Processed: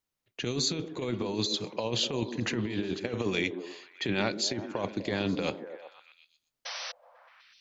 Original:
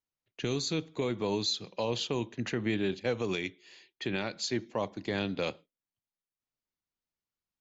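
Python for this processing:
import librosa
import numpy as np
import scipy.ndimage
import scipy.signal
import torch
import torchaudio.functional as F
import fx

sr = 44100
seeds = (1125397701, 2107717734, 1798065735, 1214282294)

y = fx.spec_paint(x, sr, seeds[0], shape='noise', start_s=6.65, length_s=0.27, low_hz=480.0, high_hz=6100.0, level_db=-44.0)
y = fx.over_compress(y, sr, threshold_db=-33.0, ratio=-0.5)
y = fx.echo_stepped(y, sr, ms=124, hz=280.0, octaves=0.7, feedback_pct=70, wet_db=-6.0)
y = F.gain(torch.from_numpy(y), 3.5).numpy()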